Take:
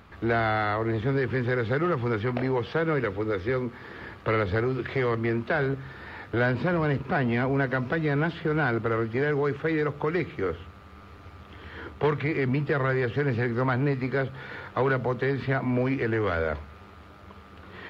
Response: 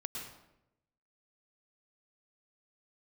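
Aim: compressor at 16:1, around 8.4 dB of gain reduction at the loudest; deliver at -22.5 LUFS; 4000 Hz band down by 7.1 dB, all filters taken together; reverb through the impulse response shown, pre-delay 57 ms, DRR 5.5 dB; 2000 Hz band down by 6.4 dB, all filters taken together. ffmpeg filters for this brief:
-filter_complex "[0:a]equalizer=f=2k:t=o:g=-8,equalizer=f=4k:t=o:g=-6,acompressor=threshold=-29dB:ratio=16,asplit=2[a][b];[1:a]atrim=start_sample=2205,adelay=57[c];[b][c]afir=irnorm=-1:irlink=0,volume=-5.5dB[d];[a][d]amix=inputs=2:normalize=0,volume=11dB"

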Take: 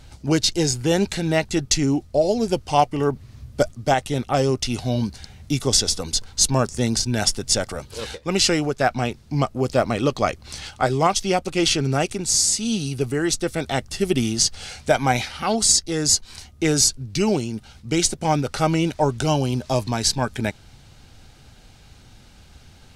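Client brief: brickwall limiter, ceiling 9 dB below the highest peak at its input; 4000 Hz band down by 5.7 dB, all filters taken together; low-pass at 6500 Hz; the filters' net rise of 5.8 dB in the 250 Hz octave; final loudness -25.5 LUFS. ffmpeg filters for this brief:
-af "lowpass=6.5k,equalizer=f=250:t=o:g=7.5,equalizer=f=4k:t=o:g=-6.5,volume=-2.5dB,alimiter=limit=-14dB:level=0:latency=1"

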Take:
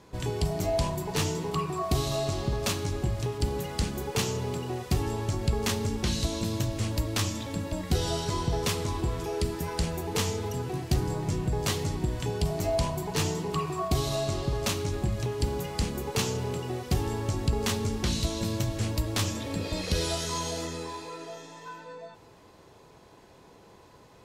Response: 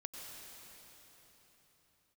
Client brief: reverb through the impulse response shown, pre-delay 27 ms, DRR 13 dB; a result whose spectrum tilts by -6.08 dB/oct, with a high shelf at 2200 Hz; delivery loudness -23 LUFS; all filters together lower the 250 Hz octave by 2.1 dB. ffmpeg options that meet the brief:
-filter_complex "[0:a]equalizer=f=250:t=o:g=-3,highshelf=f=2.2k:g=-8.5,asplit=2[a][b];[1:a]atrim=start_sample=2205,adelay=27[c];[b][c]afir=irnorm=-1:irlink=0,volume=-10.5dB[d];[a][d]amix=inputs=2:normalize=0,volume=8.5dB"

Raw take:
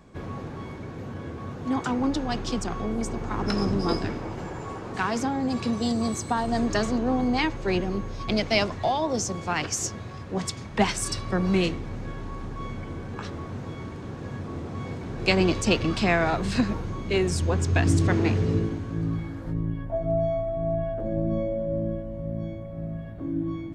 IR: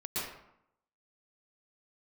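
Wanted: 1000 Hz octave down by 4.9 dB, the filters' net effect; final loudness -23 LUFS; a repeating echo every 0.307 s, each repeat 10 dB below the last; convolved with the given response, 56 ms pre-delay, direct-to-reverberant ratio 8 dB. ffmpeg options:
-filter_complex "[0:a]equalizer=f=1k:t=o:g=-7,aecho=1:1:307|614|921|1228:0.316|0.101|0.0324|0.0104,asplit=2[a][b];[1:a]atrim=start_sample=2205,adelay=56[c];[b][c]afir=irnorm=-1:irlink=0,volume=-12.5dB[d];[a][d]amix=inputs=2:normalize=0,volume=4dB"

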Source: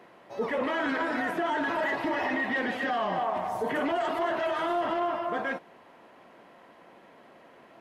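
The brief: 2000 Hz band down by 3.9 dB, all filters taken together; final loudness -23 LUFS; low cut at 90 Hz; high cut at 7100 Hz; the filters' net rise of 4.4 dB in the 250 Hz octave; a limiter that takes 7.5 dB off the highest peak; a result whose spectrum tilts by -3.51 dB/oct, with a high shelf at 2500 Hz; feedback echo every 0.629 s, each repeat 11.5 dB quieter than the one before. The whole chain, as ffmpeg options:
-af "highpass=90,lowpass=7.1k,equalizer=f=250:t=o:g=5.5,equalizer=f=2k:t=o:g=-3.5,highshelf=f=2.5k:g=-3,alimiter=level_in=0.5dB:limit=-24dB:level=0:latency=1,volume=-0.5dB,aecho=1:1:629|1258|1887:0.266|0.0718|0.0194,volume=9.5dB"

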